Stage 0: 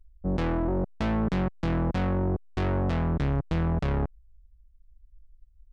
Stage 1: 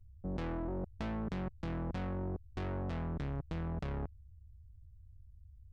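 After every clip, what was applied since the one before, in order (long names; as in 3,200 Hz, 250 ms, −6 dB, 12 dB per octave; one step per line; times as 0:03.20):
noise in a band 45–96 Hz −48 dBFS
output level in coarse steps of 18 dB
level −1 dB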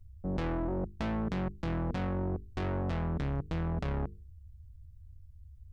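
mains-hum notches 50/100/150/200/250/300/350/400/450 Hz
level +5.5 dB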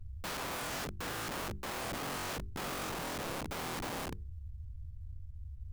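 running median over 41 samples
wrap-around overflow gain 40.5 dB
level +6.5 dB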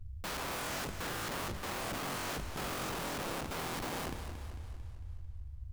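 feedback echo with a swinging delay time 224 ms, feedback 53%, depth 106 cents, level −9.5 dB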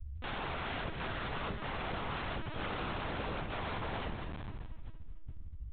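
linear-prediction vocoder at 8 kHz pitch kept
level +1 dB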